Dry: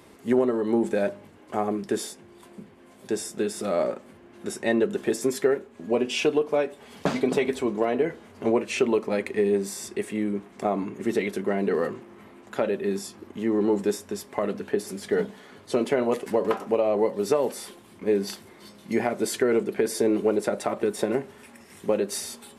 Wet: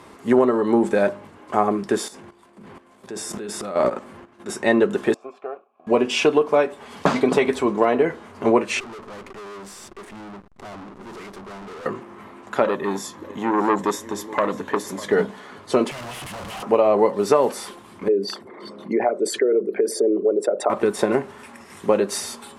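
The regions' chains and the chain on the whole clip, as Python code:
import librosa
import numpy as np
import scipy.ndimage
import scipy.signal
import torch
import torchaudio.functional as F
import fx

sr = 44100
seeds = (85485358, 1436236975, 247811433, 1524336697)

y = fx.chain(x, sr, fx.transient(attack_db=-3, sustain_db=10),
    fx.level_steps(step_db=12), at=(2.08, 4.49))
y = fx.chain(y, sr, fx.law_mismatch(coded='A'),
    fx.vowel_filter(vowel='a'),
    fx.high_shelf(hz=4900.0, db=-10.0), at=(5.14, 5.87))
y = fx.chain(y, sr, fx.tube_stage(drive_db=38.0, bias=0.45),
    fx.backlash(play_db=-39.5), at=(8.8, 11.86))
y = fx.chain(y, sr, fx.ripple_eq(per_octave=1.1, db=6),
    fx.echo_single(ms=600, db=-19.0),
    fx.transformer_sat(knee_hz=1300.0), at=(12.64, 15.12))
y = fx.chain(y, sr, fx.curve_eq(hz=(140.0, 210.0, 430.0, 710.0, 1200.0, 3100.0, 5800.0, 9500.0), db=(0, -17, -29, -9, -22, 9, -23, 10)),
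    fx.schmitt(flips_db=-49.5), at=(15.91, 16.63))
y = fx.chain(y, sr, fx.envelope_sharpen(power=2.0),
    fx.highpass(hz=300.0, slope=6),
    fx.band_squash(depth_pct=40), at=(18.08, 20.7))
y = scipy.signal.sosfilt(scipy.signal.butter(2, 11000.0, 'lowpass', fs=sr, output='sos'), y)
y = fx.peak_eq(y, sr, hz=1100.0, db=7.5, octaves=0.98)
y = y * 10.0 ** (4.5 / 20.0)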